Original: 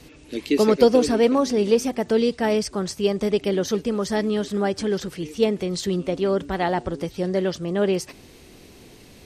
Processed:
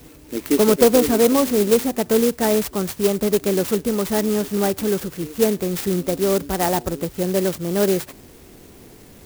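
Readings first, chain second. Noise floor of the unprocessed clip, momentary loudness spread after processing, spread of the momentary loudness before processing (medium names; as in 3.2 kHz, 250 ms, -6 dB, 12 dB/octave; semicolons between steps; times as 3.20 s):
-48 dBFS, 9 LU, 9 LU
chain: in parallel at -4 dB: overload inside the chain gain 13.5 dB; on the sum: sampling jitter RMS 0.091 ms; trim -1.5 dB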